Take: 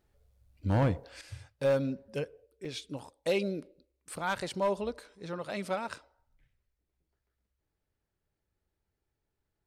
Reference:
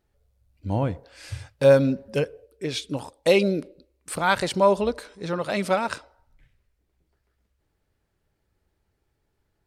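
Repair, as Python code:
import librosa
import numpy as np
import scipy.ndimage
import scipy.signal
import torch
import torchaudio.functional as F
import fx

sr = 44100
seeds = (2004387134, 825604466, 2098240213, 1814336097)

y = fx.fix_declip(x, sr, threshold_db=-21.5)
y = fx.fix_interpolate(y, sr, at_s=(2.65,), length_ms=3.8)
y = fx.gain(y, sr, db=fx.steps((0.0, 0.0), (1.21, 10.5)))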